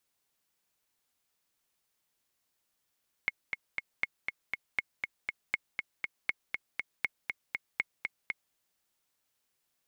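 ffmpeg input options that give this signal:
-f lavfi -i "aevalsrc='pow(10,(-15-4.5*gte(mod(t,3*60/239),60/239))/20)*sin(2*PI*2170*mod(t,60/239))*exp(-6.91*mod(t,60/239)/0.03)':d=5.27:s=44100"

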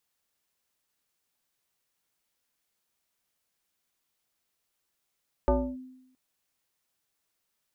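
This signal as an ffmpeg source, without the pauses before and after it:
-f lavfi -i "aevalsrc='0.133*pow(10,-3*t/0.86)*sin(2*PI*257*t+2*clip(1-t/0.29,0,1)*sin(2*PI*1.22*257*t))':d=0.67:s=44100"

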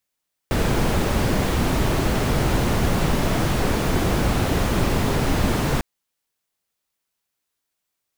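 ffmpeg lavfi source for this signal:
-f lavfi -i "anoisesrc=c=brown:a=0.495:d=5.3:r=44100:seed=1"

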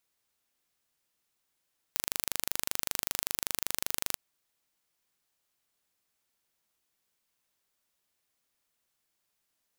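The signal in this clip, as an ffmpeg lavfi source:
-f lavfi -i "aevalsrc='0.75*eq(mod(n,1750),0)':d=2.22:s=44100"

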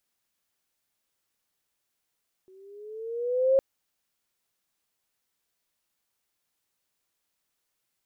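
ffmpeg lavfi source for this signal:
-f lavfi -i "aevalsrc='pow(10,(-16+35*(t/1.11-1))/20)*sin(2*PI*373*1.11/(6.5*log(2)/12)*(exp(6.5*log(2)/12*t/1.11)-1))':d=1.11:s=44100"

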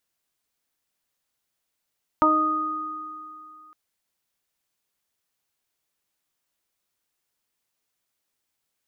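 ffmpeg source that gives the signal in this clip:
-f lavfi -i "aevalsrc='0.0891*pow(10,-3*t/2.1)*sin(2*PI*310*t)+0.0708*pow(10,-3*t/0.88)*sin(2*PI*620*t)+0.141*pow(10,-3*t/0.21)*sin(2*PI*930*t)+0.158*pow(10,-3*t/2.84)*sin(2*PI*1240*t)':d=1.51:s=44100"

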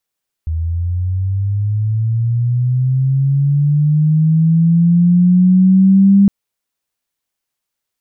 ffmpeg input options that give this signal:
-f lavfi -i "aevalsrc='pow(10,(-15.5+10.5*t/5.81)/20)*sin(2*PI*(79*t+121*t*t/(2*5.81)))':d=5.81:s=44100"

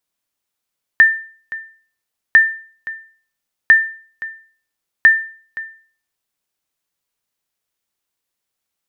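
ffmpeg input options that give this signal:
-f lavfi -i "aevalsrc='0.841*(sin(2*PI*1790*mod(t,1.35))*exp(-6.91*mod(t,1.35)/0.45)+0.126*sin(2*PI*1790*max(mod(t,1.35)-0.52,0))*exp(-6.91*max(mod(t,1.35)-0.52,0)/0.45))':d=5.4:s=44100"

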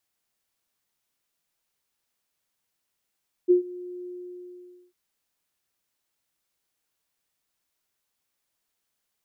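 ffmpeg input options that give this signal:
-f lavfi -i "aevalsrc='0.237*sin(2*PI*358*t)':d=1.447:s=44100,afade=t=in:d=0.027,afade=t=out:st=0.027:d=0.115:silence=0.0794,afade=t=out:st=0.58:d=0.867"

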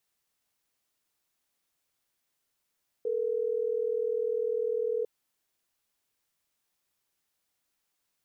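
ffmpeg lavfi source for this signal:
-f lavfi -i "aevalsrc='0.0335*(sin(2*PI*440*t)+sin(2*PI*480*t))*clip(min(mod(t,6),2-mod(t,6))/0.005,0,1)':d=3.12:s=44100"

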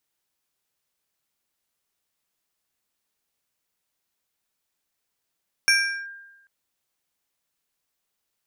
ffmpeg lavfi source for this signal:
-f lavfi -i "aevalsrc='0.224*pow(10,-3*t/1.06)*sin(2*PI*1600*t+1.4*clip(1-t/0.39,0,1)*sin(2*PI*2.46*1600*t))':d=0.79:s=44100"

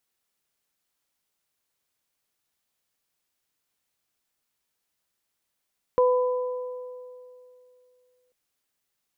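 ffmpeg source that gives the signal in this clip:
-f lavfi -i "aevalsrc='0.158*pow(10,-3*t/2.69)*sin(2*PI*500*t)+0.0708*pow(10,-3*t/1.95)*sin(2*PI*1000*t)':d=2.34:s=44100"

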